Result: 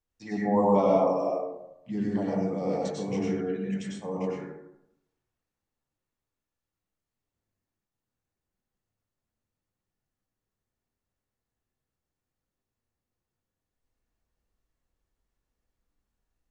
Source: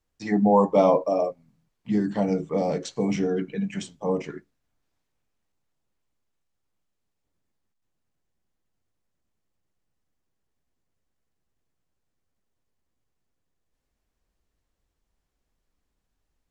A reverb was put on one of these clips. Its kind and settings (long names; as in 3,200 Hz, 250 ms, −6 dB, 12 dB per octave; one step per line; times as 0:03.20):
dense smooth reverb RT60 0.82 s, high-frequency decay 0.4×, pre-delay 85 ms, DRR −4.5 dB
level −9.5 dB